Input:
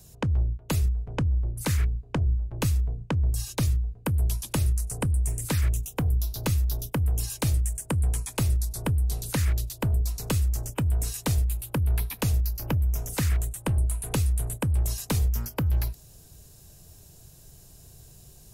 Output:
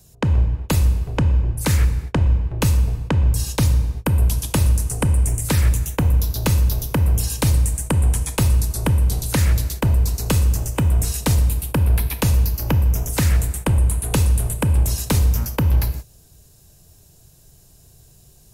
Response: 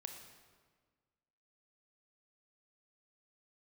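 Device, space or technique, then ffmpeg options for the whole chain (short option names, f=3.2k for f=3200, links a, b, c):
keyed gated reverb: -filter_complex "[0:a]asplit=3[a][b][c];[1:a]atrim=start_sample=2205[d];[b][d]afir=irnorm=-1:irlink=0[e];[c]apad=whole_len=817210[f];[e][f]sidechaingate=range=-33dB:threshold=-40dB:ratio=16:detection=peak,volume=7.5dB[g];[a][g]amix=inputs=2:normalize=0"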